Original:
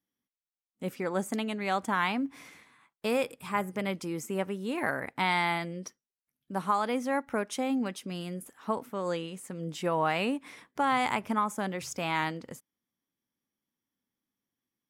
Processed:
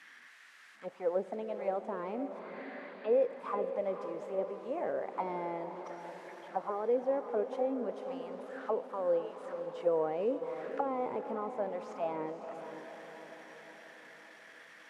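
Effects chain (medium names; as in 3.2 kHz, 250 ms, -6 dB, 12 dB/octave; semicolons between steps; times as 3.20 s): one-bit delta coder 64 kbps, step -41.5 dBFS; 2.39–3.13 s: Chebyshev low-pass 4.7 kHz, order 8; waveshaping leveller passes 1; auto-wah 470–2000 Hz, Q 4, down, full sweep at -23.5 dBFS; echo that smears into a reverb 509 ms, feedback 58%, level -9 dB; on a send at -18 dB: reverberation RT60 1.7 s, pre-delay 26 ms; on the sum: trim +2 dB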